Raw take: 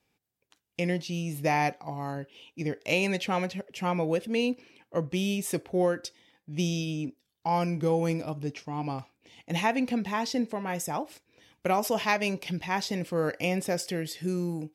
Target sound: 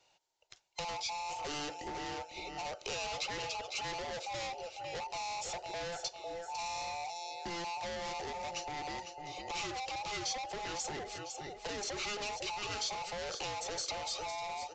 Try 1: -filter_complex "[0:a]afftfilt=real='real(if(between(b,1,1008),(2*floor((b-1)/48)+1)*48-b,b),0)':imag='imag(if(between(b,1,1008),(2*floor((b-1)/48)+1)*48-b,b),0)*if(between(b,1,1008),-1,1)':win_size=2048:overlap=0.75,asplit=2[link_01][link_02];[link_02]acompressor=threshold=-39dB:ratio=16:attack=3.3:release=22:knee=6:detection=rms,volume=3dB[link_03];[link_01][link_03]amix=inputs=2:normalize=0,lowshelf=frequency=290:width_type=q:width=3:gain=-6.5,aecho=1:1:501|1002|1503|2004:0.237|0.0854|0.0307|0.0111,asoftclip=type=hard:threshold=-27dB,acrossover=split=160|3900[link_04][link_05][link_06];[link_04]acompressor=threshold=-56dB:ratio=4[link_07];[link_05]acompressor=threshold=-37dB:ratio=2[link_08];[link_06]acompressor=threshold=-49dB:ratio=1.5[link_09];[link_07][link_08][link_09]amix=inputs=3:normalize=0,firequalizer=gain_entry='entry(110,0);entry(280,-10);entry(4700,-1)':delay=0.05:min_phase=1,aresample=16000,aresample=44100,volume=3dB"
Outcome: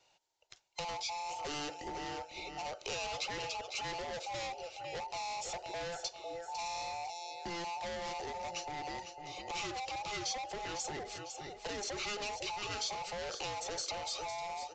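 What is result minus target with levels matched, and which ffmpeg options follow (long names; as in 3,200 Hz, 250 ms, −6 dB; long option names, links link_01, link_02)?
downward compressor: peak gain reduction +7.5 dB
-filter_complex "[0:a]afftfilt=real='real(if(between(b,1,1008),(2*floor((b-1)/48)+1)*48-b,b),0)':imag='imag(if(between(b,1,1008),(2*floor((b-1)/48)+1)*48-b,b),0)*if(between(b,1,1008),-1,1)':win_size=2048:overlap=0.75,asplit=2[link_01][link_02];[link_02]acompressor=threshold=-31dB:ratio=16:attack=3.3:release=22:knee=6:detection=rms,volume=3dB[link_03];[link_01][link_03]amix=inputs=2:normalize=0,lowshelf=frequency=290:width_type=q:width=3:gain=-6.5,aecho=1:1:501|1002|1503|2004:0.237|0.0854|0.0307|0.0111,asoftclip=type=hard:threshold=-27dB,acrossover=split=160|3900[link_04][link_05][link_06];[link_04]acompressor=threshold=-56dB:ratio=4[link_07];[link_05]acompressor=threshold=-37dB:ratio=2[link_08];[link_06]acompressor=threshold=-49dB:ratio=1.5[link_09];[link_07][link_08][link_09]amix=inputs=3:normalize=0,firequalizer=gain_entry='entry(110,0);entry(280,-10);entry(4700,-1)':delay=0.05:min_phase=1,aresample=16000,aresample=44100,volume=3dB"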